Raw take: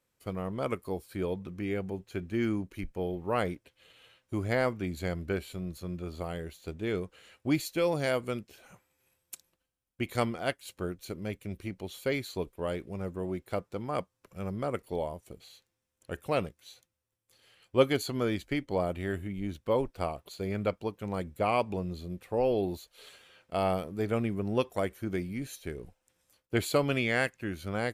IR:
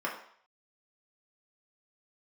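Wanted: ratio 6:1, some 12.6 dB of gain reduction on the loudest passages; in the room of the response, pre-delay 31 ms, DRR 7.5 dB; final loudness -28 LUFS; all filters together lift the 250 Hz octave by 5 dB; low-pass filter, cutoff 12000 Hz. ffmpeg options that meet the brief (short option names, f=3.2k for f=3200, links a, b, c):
-filter_complex "[0:a]lowpass=12k,equalizer=f=250:t=o:g=6.5,acompressor=threshold=-29dB:ratio=6,asplit=2[a][b];[1:a]atrim=start_sample=2205,adelay=31[c];[b][c]afir=irnorm=-1:irlink=0,volume=-14.5dB[d];[a][d]amix=inputs=2:normalize=0,volume=7dB"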